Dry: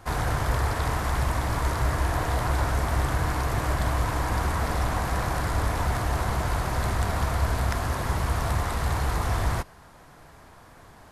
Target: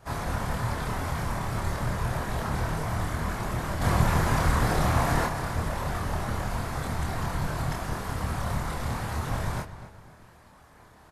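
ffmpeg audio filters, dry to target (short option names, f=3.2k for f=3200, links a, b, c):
-filter_complex "[0:a]asplit=3[a][b][c];[a]afade=t=out:st=3.81:d=0.02[d];[b]acontrast=73,afade=t=in:st=3.81:d=0.02,afade=t=out:st=5.25:d=0.02[e];[c]afade=t=in:st=5.25:d=0.02[f];[d][e][f]amix=inputs=3:normalize=0,afftfilt=real='hypot(re,im)*cos(2*PI*random(0))':imag='hypot(re,im)*sin(2*PI*random(1))':win_size=512:overlap=0.75,asplit=2[g][h];[h]adelay=26,volume=-3dB[i];[g][i]amix=inputs=2:normalize=0,asplit=2[j][k];[k]adelay=253,lowpass=f=3.5k:p=1,volume=-13dB,asplit=2[l][m];[m]adelay=253,lowpass=f=3.5k:p=1,volume=0.39,asplit=2[n][o];[o]adelay=253,lowpass=f=3.5k:p=1,volume=0.39,asplit=2[p][q];[q]adelay=253,lowpass=f=3.5k:p=1,volume=0.39[r];[l][n][p][r]amix=inputs=4:normalize=0[s];[j][s]amix=inputs=2:normalize=0"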